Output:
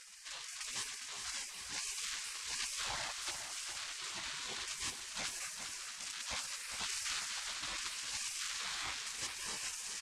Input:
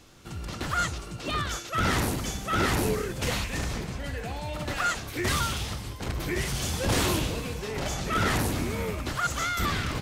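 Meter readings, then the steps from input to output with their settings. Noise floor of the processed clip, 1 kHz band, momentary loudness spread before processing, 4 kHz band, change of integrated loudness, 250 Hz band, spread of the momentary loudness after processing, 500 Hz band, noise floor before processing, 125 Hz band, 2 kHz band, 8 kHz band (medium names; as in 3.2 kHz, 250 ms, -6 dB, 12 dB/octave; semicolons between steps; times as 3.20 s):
-48 dBFS, -18.0 dB, 9 LU, -6.0 dB, -10.5 dB, -30.0 dB, 4 LU, -26.0 dB, -40 dBFS, -32.5 dB, -11.5 dB, -3.5 dB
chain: median filter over 9 samples; high-pass 490 Hz 6 dB/octave; high-order bell 1.7 kHz -10.5 dB; in parallel at -5.5 dB: hard clipper -29 dBFS, distortion -17 dB; on the sum: spectral gate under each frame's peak -25 dB weak; low-pass 8.4 kHz 24 dB/octave; feedback delay 407 ms, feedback 50%, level -12 dB; level flattener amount 50%; trim +4 dB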